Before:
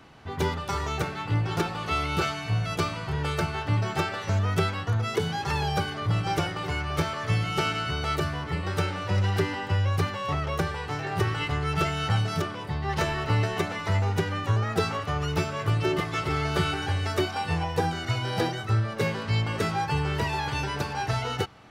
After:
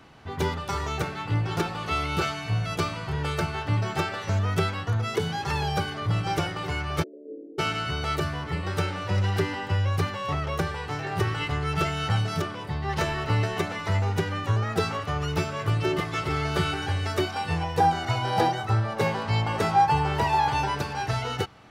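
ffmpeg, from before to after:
-filter_complex "[0:a]asplit=3[a][b][c];[a]afade=t=out:st=7.02:d=0.02[d];[b]asuperpass=centerf=360:order=12:qfactor=1.3,afade=t=in:st=7.02:d=0.02,afade=t=out:st=7.58:d=0.02[e];[c]afade=t=in:st=7.58:d=0.02[f];[d][e][f]amix=inputs=3:normalize=0,asettb=1/sr,asplit=3[g][h][i];[g]atrim=end=17.804[j];[h]atrim=start=17.8:end=20.75,asetpts=PTS-STARTPTS,afade=t=in:d=0.004:c=qsin,afade=t=out:st=2.946:d=0.004:c=qsin,equalizer=f=820:t=o:w=0.69:g=10.5[k];[i]atrim=start=20.746[l];[j][k]acrossfade=d=0.004:c1=hsin:c2=qsin[m];[m][l]acrossfade=d=0.004:c1=qsin:c2=hsin"

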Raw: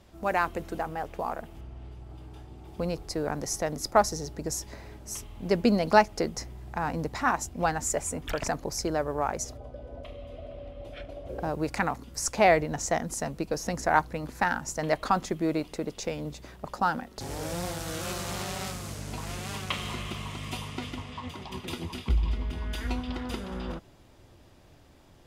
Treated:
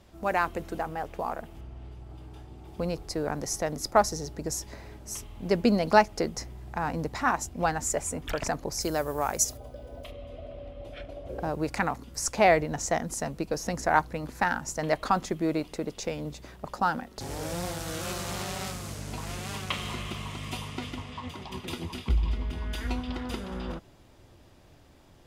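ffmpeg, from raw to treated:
-filter_complex "[0:a]asplit=3[a][b][c];[a]afade=t=out:st=8.8:d=0.02[d];[b]aemphasis=mode=production:type=75fm,afade=t=in:st=8.8:d=0.02,afade=t=out:st=10.1:d=0.02[e];[c]afade=t=in:st=10.1:d=0.02[f];[d][e][f]amix=inputs=3:normalize=0"

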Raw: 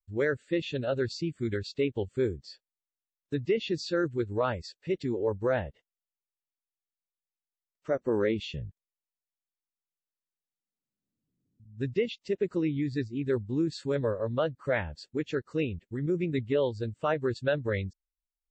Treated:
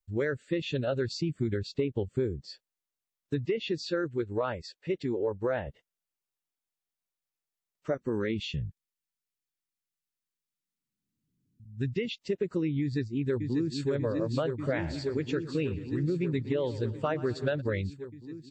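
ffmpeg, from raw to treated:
-filter_complex "[0:a]asettb=1/sr,asplit=3[a][b][c];[a]atrim=end=1.294[d];[b]atrim=start=1.29:end=2.49,asetpts=PTS-STARTPTS,afade=t=in:d=0.004:c=qsin,afade=t=out:st=1.196:d=0.004:c=qsin,tiltshelf=f=970:g=3[e];[c]atrim=start=2.486[f];[d][e]acrossfade=d=0.004:c1=hsin:c2=qsin[g];[g][f]acrossfade=d=0.004:c1=qsin:c2=hsin,asettb=1/sr,asplit=3[h][i][j];[h]atrim=end=3.464[k];[i]atrim=start=3.46:end=5.67,asetpts=PTS-STARTPTS,afade=t=in:d=0.004:c=qsin,afade=t=out:st=2.206:d=0.004:c=qsin,bass=f=250:g=-6,treble=f=4k:g=-5[l];[j]atrim=start=5.666[m];[k][l]acrossfade=d=0.004:c1=hsin:c2=qsin[n];[n][m]acrossfade=d=0.004:c1=qsin:c2=hsin,asettb=1/sr,asplit=3[o][p][q];[o]atrim=end=7.944[r];[p]atrim=start=7.94:end=12.06,asetpts=PTS-STARTPTS,afade=t=in:d=0.004:c=qsin,afade=t=out:st=4.116:d=0.004:c=qsin,equalizer=f=640:t=o:w=0.99:g=-12.5[s];[q]atrim=start=12.056[t];[r][s]acrossfade=d=0.004:c1=hsin:c2=qsin[u];[u][t]acrossfade=d=0.004:c1=qsin:c2=hsin,asplit=2[v][w];[w]afade=t=in:st=12.81:d=0.01,afade=t=out:st=13.91:d=0.01,aecho=0:1:590|1180|1770|2360|2950|3540|4130|4720|5310|5900|6490|7080:0.530884|0.424708|0.339766|0.271813|0.21745|0.17396|0.139168|0.111335|0.0890676|0.0712541|0.0570033|0.0456026[x];[v][x]amix=inputs=2:normalize=0,asplit=3[y][z][aa];[y]afade=t=out:st=14.62:d=0.02[ab];[z]aecho=1:1:117|234|351|468:0.106|0.0583|0.032|0.0176,afade=t=in:st=14.62:d=0.02,afade=t=out:st=17.6:d=0.02[ac];[aa]afade=t=in:st=17.6:d=0.02[ad];[ab][ac][ad]amix=inputs=3:normalize=0,equalizer=f=150:w=1.5:g=3,acompressor=threshold=-28dB:ratio=6,volume=2.5dB"

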